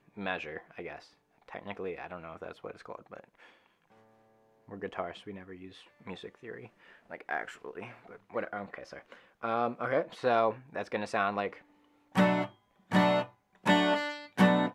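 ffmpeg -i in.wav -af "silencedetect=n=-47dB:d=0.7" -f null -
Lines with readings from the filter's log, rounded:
silence_start: 3.46
silence_end: 4.68 | silence_duration: 1.22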